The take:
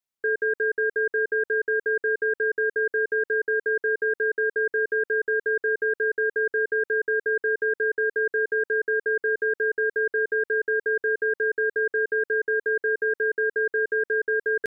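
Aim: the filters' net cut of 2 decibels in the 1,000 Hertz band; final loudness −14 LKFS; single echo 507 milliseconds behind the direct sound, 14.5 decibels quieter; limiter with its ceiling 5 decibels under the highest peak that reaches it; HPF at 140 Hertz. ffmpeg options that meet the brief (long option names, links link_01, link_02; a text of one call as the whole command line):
ffmpeg -i in.wav -af "highpass=140,equalizer=frequency=1000:width_type=o:gain=-3.5,alimiter=limit=-22.5dB:level=0:latency=1,aecho=1:1:507:0.188,volume=15.5dB" out.wav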